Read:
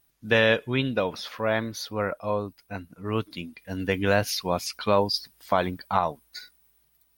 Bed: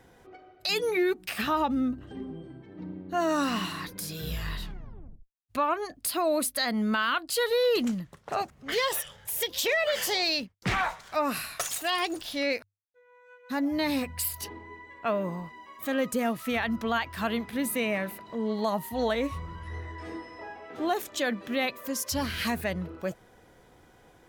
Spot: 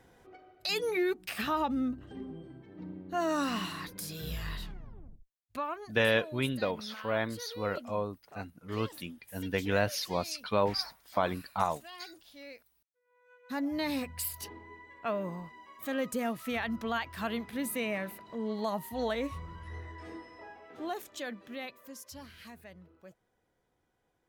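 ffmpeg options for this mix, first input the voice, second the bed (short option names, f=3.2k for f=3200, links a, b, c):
-filter_complex "[0:a]adelay=5650,volume=-6dB[a];[1:a]volume=11dB,afade=t=out:st=5.16:d=0.93:silence=0.158489,afade=t=in:st=13.01:d=0.44:silence=0.177828,afade=t=out:st=19.76:d=2.61:silence=0.16788[b];[a][b]amix=inputs=2:normalize=0"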